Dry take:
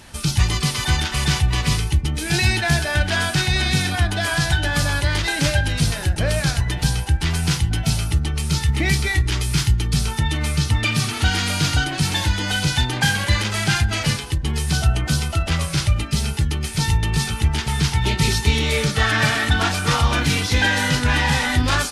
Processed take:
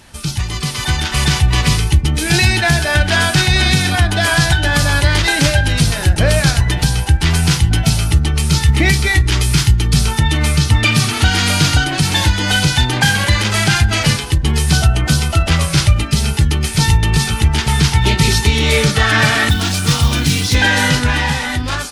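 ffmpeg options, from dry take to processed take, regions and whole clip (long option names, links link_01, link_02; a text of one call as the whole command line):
ffmpeg -i in.wav -filter_complex "[0:a]asettb=1/sr,asplit=3[link_01][link_02][link_03];[link_01]atrim=end=19.494[link_04];[link_02]atrim=start=19.49:end=20.55,asetpts=PTS-STARTPTS,afade=type=in:duration=0.004:curve=qsin,afade=type=out:start_time=1.056:duration=0.004:curve=qsin,highpass=71,acrossover=split=310|3000[link_05][link_06][link_07];[link_06]acompressor=threshold=-51dB:ratio=1.5:attack=3.2:release=140:knee=2.83:detection=peak[link_08];[link_05][link_08][link_07]amix=inputs=3:normalize=0,acrusher=bits=5:mode=log:mix=0:aa=0.000001[link_09];[link_03]atrim=start=20.546[link_10];[link_04][link_09]acrossfade=duration=0.004:curve1=hsin:curve2=qsin[link_11];[link_11][link_10]acrossfade=duration=0.004:curve1=qsin:curve2=hsin,alimiter=limit=-9.5dB:level=0:latency=1:release=215,dynaudnorm=framelen=180:gausssize=11:maxgain=11dB" out.wav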